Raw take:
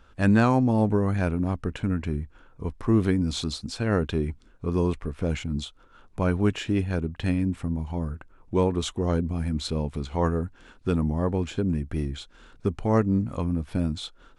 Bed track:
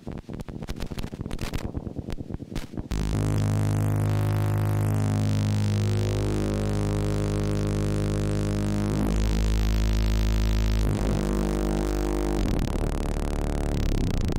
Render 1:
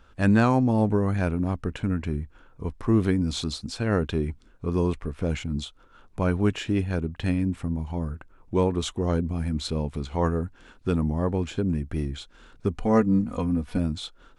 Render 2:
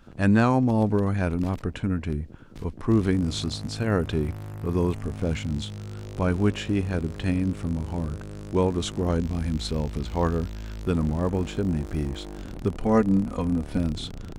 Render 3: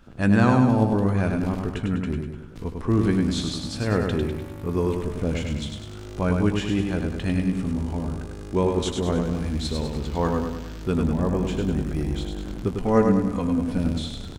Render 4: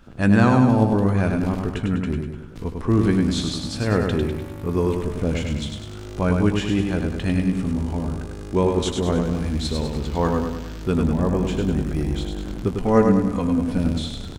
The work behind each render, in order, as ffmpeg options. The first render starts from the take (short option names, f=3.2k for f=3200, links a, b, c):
-filter_complex "[0:a]asettb=1/sr,asplit=3[a][b][c];[a]atrim=end=12.754[d];[b]atrim=start=12.75:end=13.78,asetpts=PTS-STARTPTS,afade=t=in:d=0.004:c=qsin,afade=t=out:st=1.026:d=0.004:c=qsin,aecho=1:1:4.1:0.64,atrim=end_sample=45423[e];[c]atrim=start=13.776[f];[d][e]acrossfade=d=0.004:c1=hsin:c2=qsin[g];[g][f]acrossfade=d=0.004:c1=qsin:c2=hsin"
-filter_complex "[1:a]volume=-12.5dB[a];[0:a][a]amix=inputs=2:normalize=0"
-filter_complex "[0:a]asplit=2[a][b];[b]adelay=16,volume=-12dB[c];[a][c]amix=inputs=2:normalize=0,asplit=2[d][e];[e]aecho=0:1:100|200|300|400|500|600:0.596|0.298|0.149|0.0745|0.0372|0.0186[f];[d][f]amix=inputs=2:normalize=0"
-af "volume=2.5dB,alimiter=limit=-3dB:level=0:latency=1"